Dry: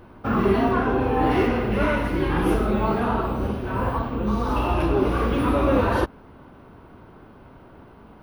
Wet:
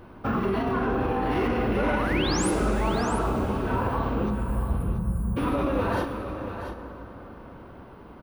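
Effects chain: spectral delete 4.3–5.37, 230–7000 Hz; limiter -18 dBFS, peak gain reduction 10.5 dB; painted sound rise, 1.69–2.51, 270–11000 Hz -33 dBFS; on a send: echo 0.681 s -10 dB; on the sum: plate-style reverb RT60 4.9 s, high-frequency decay 0.5×, DRR 8 dB

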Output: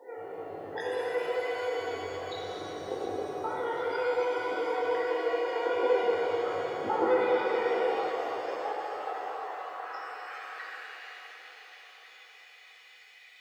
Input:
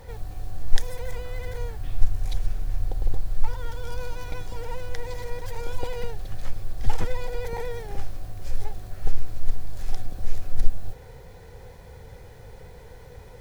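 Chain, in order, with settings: spectral limiter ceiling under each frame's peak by 13 dB; dynamic EQ 1300 Hz, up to +7 dB, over -56 dBFS, Q 6.1; high-pass sweep 380 Hz -> 2500 Hz, 7.79–11.44; chorus 0.27 Hz, delay 17.5 ms, depth 4.9 ms; loudest bins only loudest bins 32; requantised 12-bit, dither none; on a send: thinning echo 0.727 s, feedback 54%, high-pass 170 Hz, level -15 dB; on the sum: shimmer reverb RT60 3.5 s, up +7 st, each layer -8 dB, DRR -5 dB; gain -6 dB

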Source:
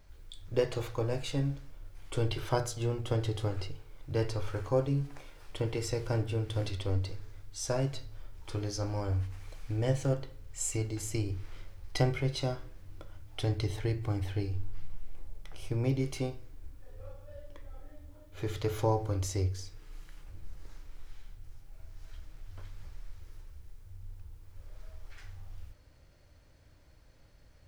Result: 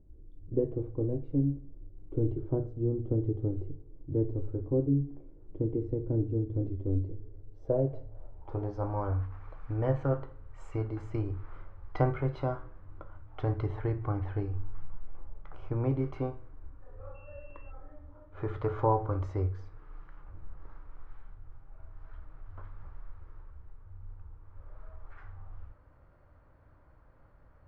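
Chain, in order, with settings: 17.14–17.7 whine 2700 Hz -46 dBFS; low-pass sweep 320 Hz -> 1200 Hz, 7.04–9.15

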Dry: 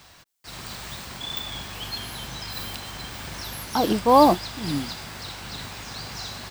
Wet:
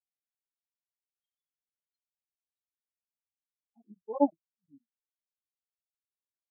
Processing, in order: repeated pitch sweeps -2 st, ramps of 0.275 s; crackling interface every 0.12 s, samples 1024, zero, from 0.34; spectral expander 4:1; gain -5.5 dB

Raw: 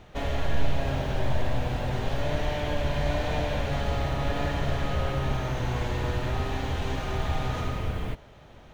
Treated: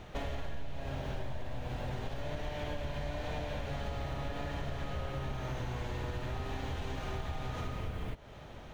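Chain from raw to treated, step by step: compressor 6:1, threshold -36 dBFS, peak gain reduction 19 dB; gain +1.5 dB

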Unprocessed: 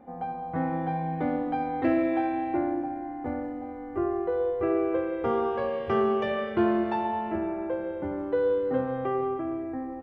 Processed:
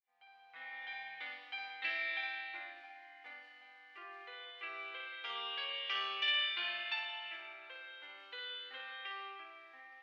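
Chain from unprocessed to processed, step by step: opening faded in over 0.93 s; Butterworth band-pass 3300 Hz, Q 1.5; high shelf 3300 Hz +7 dB; flutter echo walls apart 9.6 m, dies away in 0.62 s; gain +7 dB

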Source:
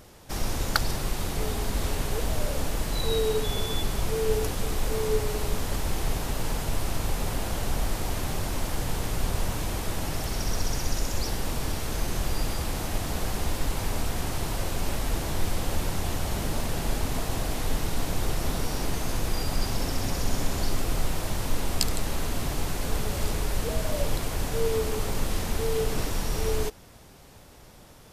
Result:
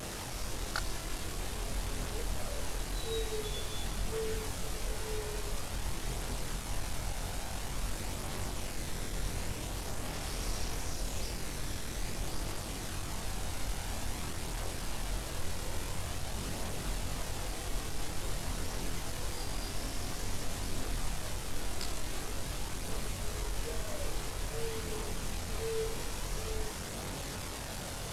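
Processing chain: delta modulation 64 kbps, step -23.5 dBFS; chorus voices 2, 0.24 Hz, delay 23 ms, depth 1.5 ms; gain -7.5 dB

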